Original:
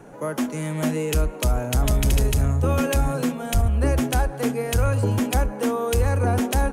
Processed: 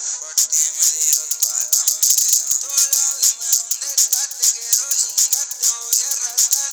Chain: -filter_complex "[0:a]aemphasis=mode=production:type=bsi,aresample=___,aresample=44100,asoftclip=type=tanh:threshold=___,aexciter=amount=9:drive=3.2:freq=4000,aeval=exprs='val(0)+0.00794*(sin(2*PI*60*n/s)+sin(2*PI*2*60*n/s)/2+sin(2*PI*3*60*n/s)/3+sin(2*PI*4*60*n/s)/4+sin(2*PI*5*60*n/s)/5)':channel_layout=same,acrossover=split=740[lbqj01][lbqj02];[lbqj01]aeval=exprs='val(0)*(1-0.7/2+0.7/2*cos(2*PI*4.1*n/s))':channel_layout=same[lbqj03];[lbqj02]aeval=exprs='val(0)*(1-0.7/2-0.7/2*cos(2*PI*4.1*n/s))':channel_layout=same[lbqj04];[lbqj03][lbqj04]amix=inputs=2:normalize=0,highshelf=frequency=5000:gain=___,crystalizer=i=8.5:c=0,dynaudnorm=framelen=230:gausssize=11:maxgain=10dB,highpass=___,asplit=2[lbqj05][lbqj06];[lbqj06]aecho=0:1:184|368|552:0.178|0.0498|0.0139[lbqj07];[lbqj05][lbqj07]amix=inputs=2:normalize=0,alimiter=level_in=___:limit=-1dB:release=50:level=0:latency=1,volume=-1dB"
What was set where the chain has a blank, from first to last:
16000, -22dB, -3, 1000, 11.5dB